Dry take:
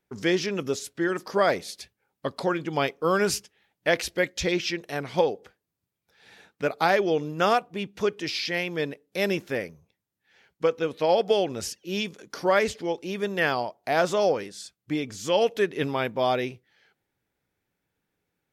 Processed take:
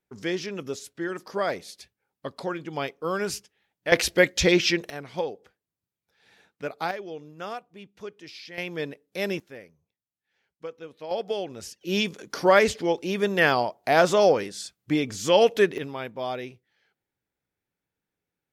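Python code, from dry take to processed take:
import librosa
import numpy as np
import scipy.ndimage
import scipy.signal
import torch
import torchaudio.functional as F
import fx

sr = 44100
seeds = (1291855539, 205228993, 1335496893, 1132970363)

y = fx.gain(x, sr, db=fx.steps((0.0, -5.0), (3.92, 6.0), (4.9, -6.5), (6.91, -13.5), (8.58, -3.0), (9.4, -14.0), (11.11, -7.0), (11.81, 4.0), (15.78, -7.0)))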